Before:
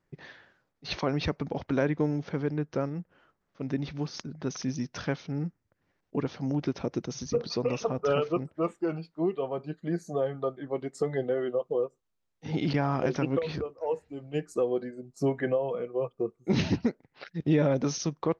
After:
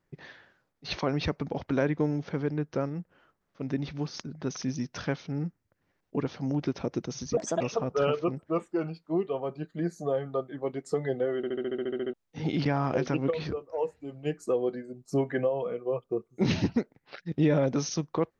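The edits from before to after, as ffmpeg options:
-filter_complex "[0:a]asplit=14[a][b][c][d][e][f][g][h][i][j][k][l][m][n];[a]atrim=end=7.374[o];[b]atrim=start=7.37:end=7.69,asetpts=PTS-STARTPTS,asetrate=59976,aresample=44100,atrim=end_sample=10376,asetpts=PTS-STARTPTS[p];[c]atrim=start=7.686:end=11.522[q];[d]atrim=start=11.448:end=11.522[r];[e]atrim=start=11.448:end=11.522[s];[f]atrim=start=11.448:end=11.522[t];[g]atrim=start=11.448:end=11.522[u];[h]atrim=start=11.448:end=11.522[v];[i]atrim=start=11.448:end=11.522[w];[j]atrim=start=11.448:end=11.522[x];[k]atrim=start=11.448:end=11.522[y];[l]atrim=start=11.448:end=11.522[z];[m]atrim=start=11.448:end=11.522[aa];[n]atrim=start=12.218[ab];[o][p]acrossfade=d=0.004:c1=hsin:c2=hsin[ac];[ac][q]acrossfade=d=0.004:c1=hsin:c2=hsin[ad];[ad][r]acrossfade=d=0.004:c1=hsin:c2=hsin[ae];[ae][s]acrossfade=d=0.004:c1=hsin:c2=hsin[af];[af][t]acrossfade=d=0.004:c1=hsin:c2=hsin[ag];[ag][u]acrossfade=d=0.004:c1=hsin:c2=hsin[ah];[ah][v]acrossfade=d=0.004:c1=hsin:c2=hsin[ai];[ai][w]acrossfade=d=0.004:c1=hsin:c2=hsin[aj];[aj][x]acrossfade=d=0.004:c1=hsin:c2=hsin[ak];[ak][y]acrossfade=d=0.004:c1=hsin:c2=hsin[al];[al][z]acrossfade=d=0.004:c1=hsin:c2=hsin[am];[am][aa]acrossfade=d=0.004:c1=hsin:c2=hsin[an];[an][ab]acrossfade=d=0.004:c1=hsin:c2=hsin"

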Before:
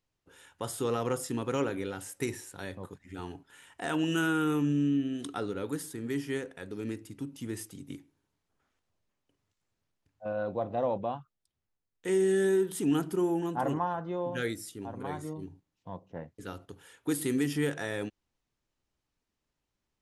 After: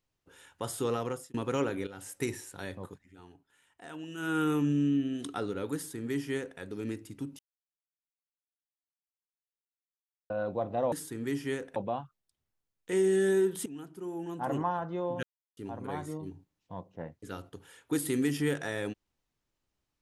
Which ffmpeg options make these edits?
-filter_complex "[0:a]asplit=12[a][b][c][d][e][f][g][h][i][j][k][l];[a]atrim=end=1.34,asetpts=PTS-STARTPTS,afade=t=out:st=0.78:d=0.56:c=qsin[m];[b]atrim=start=1.34:end=1.87,asetpts=PTS-STARTPTS,afade=t=in:d=0.004:c=hsin,afade=t=out:st=0.526:d=0.004:c=hsin:silence=0.223872[n];[c]atrim=start=1.87:end=3.11,asetpts=PTS-STARTPTS,afade=t=in:d=0.25:silence=0.223872,afade=t=out:st=1.02:d=0.22:silence=0.223872[o];[d]atrim=start=3.11:end=4.17,asetpts=PTS-STARTPTS,volume=-13dB[p];[e]atrim=start=4.17:end=7.39,asetpts=PTS-STARTPTS,afade=t=in:d=0.22:silence=0.223872,afade=t=out:st=3.216:d=0.004:c=hsin[q];[f]atrim=start=7.39:end=10.3,asetpts=PTS-STARTPTS,volume=0[r];[g]atrim=start=10.3:end=10.922,asetpts=PTS-STARTPTS,afade=t=in:d=0.004:c=hsin[s];[h]atrim=start=5.748:end=6.592[t];[i]atrim=start=10.918:end=12.82,asetpts=PTS-STARTPTS,afade=t=out:st=1.898:d=0.004:c=hsin:silence=0.141254[u];[j]atrim=start=12.82:end=14.39,asetpts=PTS-STARTPTS,afade=t=in:d=0.97:c=qua:silence=0.141254,afade=t=out:st=1.566:d=0.004:c=hsin[v];[k]atrim=start=14.39:end=14.73,asetpts=PTS-STARTPTS,volume=0[w];[l]atrim=start=14.73,asetpts=PTS-STARTPTS,afade=t=in:d=0.004:c=hsin[x];[m][n][o][p][q][r][s]concat=n=7:v=0:a=1[y];[y][t]acrossfade=d=0.004:c1=hsin:c2=hsin[z];[u][v][w][x]concat=n=4:v=0:a=1[aa];[z][aa]acrossfade=d=0.004:c1=hsin:c2=hsin"

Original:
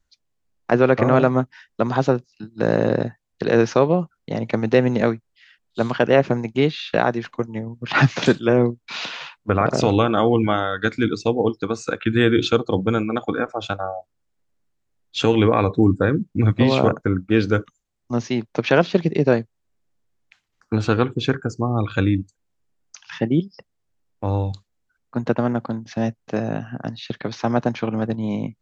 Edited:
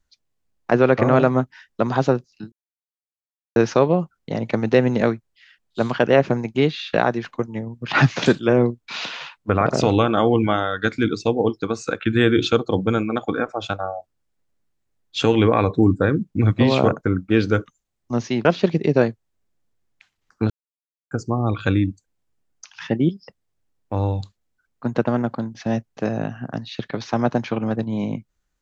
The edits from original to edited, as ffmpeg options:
-filter_complex "[0:a]asplit=6[a][b][c][d][e][f];[a]atrim=end=2.52,asetpts=PTS-STARTPTS,afade=t=out:st=2.516:d=0.004:c=hsin[g];[b]atrim=start=2.52:end=3.56,asetpts=PTS-STARTPTS,volume=0[h];[c]atrim=start=3.56:end=18.452,asetpts=PTS-STARTPTS,afade=t=in:d=0.004:c=hsin[i];[d]atrim=start=18.758:end=20.81,asetpts=PTS-STARTPTS,afade=t=out:st=2.048:d=0.004:c=hsin[j];[e]atrim=start=20.81:end=21.42,asetpts=PTS-STARTPTS,volume=0[k];[f]atrim=start=21.42,asetpts=PTS-STARTPTS,afade=t=in:d=0.004:c=hsin[l];[g][h][i]concat=n=3:v=0:a=1[m];[j][k][l]concat=n=3:v=0:a=1[n];[m][n]acrossfade=d=0.004:c1=hsin:c2=hsin"

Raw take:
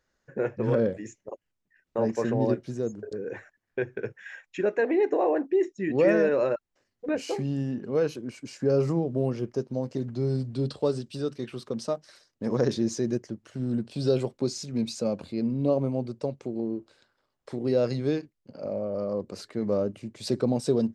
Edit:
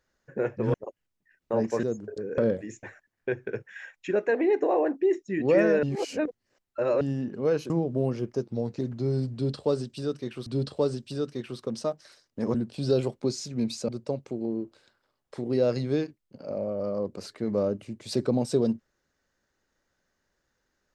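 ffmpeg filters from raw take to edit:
-filter_complex "[0:a]asplit=13[a][b][c][d][e][f][g][h][i][j][k][l][m];[a]atrim=end=0.742[n];[b]atrim=start=1.188:end=2.282[o];[c]atrim=start=2.778:end=3.332[p];[d]atrim=start=0.738:end=1.192[q];[e]atrim=start=3.328:end=6.332[r];[f]atrim=start=6.328:end=7.512,asetpts=PTS-STARTPTS,areverse[s];[g]atrim=start=7.508:end=8.202[t];[h]atrim=start=8.898:end=9.624[u];[i]atrim=start=9.62:end=9.96,asetpts=PTS-STARTPTS,asetrate=40131,aresample=44100[v];[j]atrim=start=9.956:end=11.632[w];[k]atrim=start=10.498:end=12.582[x];[l]atrim=start=13.718:end=15.062[y];[m]atrim=start=16.028[z];[n][o]acrossfade=d=0.004:c1=hsin:c2=hsin[aa];[aa][p]acrossfade=d=0.004:c1=hsin:c2=hsin[ab];[ab][q]acrossfade=d=0.004:c1=hsin:c2=hsin[ac];[ac][r]acrossfade=d=0.004:c1=hsin:c2=hsin[ad];[ad][s]acrossfade=d=0.004:c1=hsin:c2=hsin[ae];[ae][t]acrossfade=d=0.004:c1=hsin:c2=hsin[af];[af][u]acrossfade=d=0.004:c1=hsin:c2=hsin[ag];[ag][v]acrossfade=d=0.004:c1=hsin:c2=hsin[ah];[ah][w]acrossfade=d=0.004:c1=hsin:c2=hsin[ai];[ai][x]acrossfade=d=0.004:c1=hsin:c2=hsin[aj];[aj][y]acrossfade=d=0.004:c1=hsin:c2=hsin[ak];[ak][z]acrossfade=d=0.004:c1=hsin:c2=hsin"

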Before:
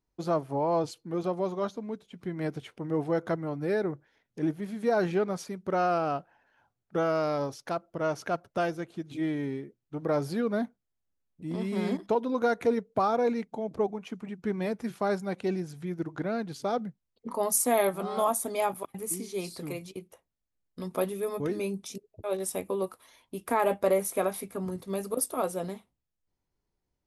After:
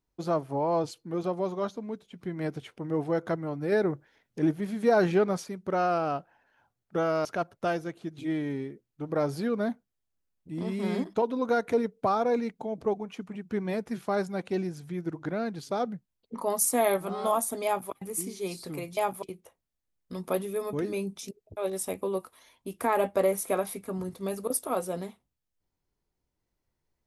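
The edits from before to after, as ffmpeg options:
-filter_complex "[0:a]asplit=6[a][b][c][d][e][f];[a]atrim=end=3.722[g];[b]atrim=start=3.718:end=5.402,asetpts=PTS-STARTPTS,volume=3.5dB[h];[c]atrim=start=5.398:end=7.252[i];[d]atrim=start=8.178:end=19.902[j];[e]atrim=start=18.578:end=18.842[k];[f]atrim=start=19.898[l];[g][h]acrossfade=d=0.004:c1=hsin:c2=hsin[m];[m][i]acrossfade=d=0.004:c1=hsin:c2=hsin[n];[n][j]acrossfade=d=0.004:c1=hsin:c2=hsin[o];[o][k]acrossfade=d=0.004:c1=hsin:c2=hsin[p];[p][l]acrossfade=d=0.004:c1=hsin:c2=hsin"

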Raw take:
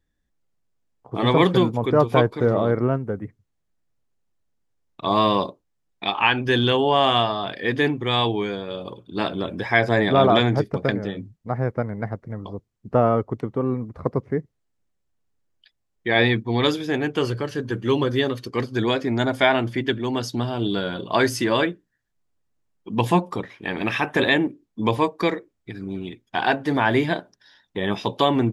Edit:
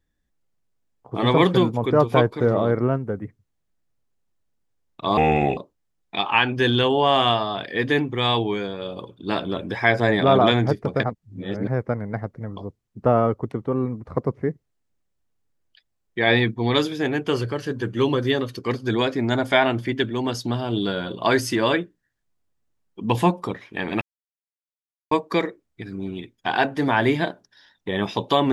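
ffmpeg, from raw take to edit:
-filter_complex "[0:a]asplit=7[a][b][c][d][e][f][g];[a]atrim=end=5.174[h];[b]atrim=start=5.17:end=5.46,asetpts=PTS-STARTPTS,asetrate=31752,aresample=44100,atrim=end_sample=17762,asetpts=PTS-STARTPTS[i];[c]atrim=start=5.456:end=10.922[j];[d]atrim=start=10.918:end=11.562,asetpts=PTS-STARTPTS,areverse[k];[e]atrim=start=11.558:end=23.9,asetpts=PTS-STARTPTS,afade=t=out:st=12.338:d=0.004:c=hsin[l];[f]atrim=start=23.9:end=25,asetpts=PTS-STARTPTS,volume=0[m];[g]atrim=start=25,asetpts=PTS-STARTPTS,afade=t=in:d=0.004:c=hsin[n];[h][i]acrossfade=d=0.004:c1=hsin:c2=hsin[o];[o][j]acrossfade=d=0.004:c1=hsin:c2=hsin[p];[p][k]acrossfade=d=0.004:c1=hsin:c2=hsin[q];[l][m][n]concat=n=3:v=0:a=1[r];[q][r]acrossfade=d=0.004:c1=hsin:c2=hsin"

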